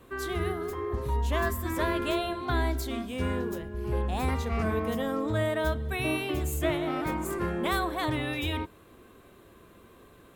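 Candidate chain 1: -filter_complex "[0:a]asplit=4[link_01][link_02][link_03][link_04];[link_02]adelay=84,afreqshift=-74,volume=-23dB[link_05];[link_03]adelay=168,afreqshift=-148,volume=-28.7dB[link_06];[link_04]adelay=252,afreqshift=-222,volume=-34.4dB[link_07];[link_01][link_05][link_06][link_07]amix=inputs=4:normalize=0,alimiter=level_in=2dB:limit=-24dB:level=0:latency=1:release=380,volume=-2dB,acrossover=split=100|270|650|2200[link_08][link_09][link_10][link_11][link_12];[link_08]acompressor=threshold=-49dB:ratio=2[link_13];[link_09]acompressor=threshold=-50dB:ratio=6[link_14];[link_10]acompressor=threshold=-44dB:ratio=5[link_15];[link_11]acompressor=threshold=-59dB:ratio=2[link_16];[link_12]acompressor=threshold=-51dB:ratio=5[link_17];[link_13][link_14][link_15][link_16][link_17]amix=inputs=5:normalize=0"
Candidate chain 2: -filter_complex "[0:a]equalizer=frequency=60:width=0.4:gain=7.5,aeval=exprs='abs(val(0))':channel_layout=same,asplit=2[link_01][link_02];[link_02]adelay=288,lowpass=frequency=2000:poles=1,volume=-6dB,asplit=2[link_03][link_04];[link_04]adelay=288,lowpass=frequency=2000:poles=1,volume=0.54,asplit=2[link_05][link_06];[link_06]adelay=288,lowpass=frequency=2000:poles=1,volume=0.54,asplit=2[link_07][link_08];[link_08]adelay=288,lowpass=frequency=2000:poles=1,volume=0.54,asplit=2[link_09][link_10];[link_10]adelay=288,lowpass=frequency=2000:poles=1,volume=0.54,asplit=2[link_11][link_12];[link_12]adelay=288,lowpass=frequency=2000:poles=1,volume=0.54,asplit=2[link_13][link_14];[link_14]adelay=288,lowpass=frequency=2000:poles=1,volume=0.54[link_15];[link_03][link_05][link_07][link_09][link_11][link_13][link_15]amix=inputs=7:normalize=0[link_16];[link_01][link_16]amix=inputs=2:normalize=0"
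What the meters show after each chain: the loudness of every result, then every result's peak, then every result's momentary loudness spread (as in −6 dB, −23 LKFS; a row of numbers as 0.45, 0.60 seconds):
−42.5, −30.0 LKFS; −29.0, −10.0 dBFS; 13, 6 LU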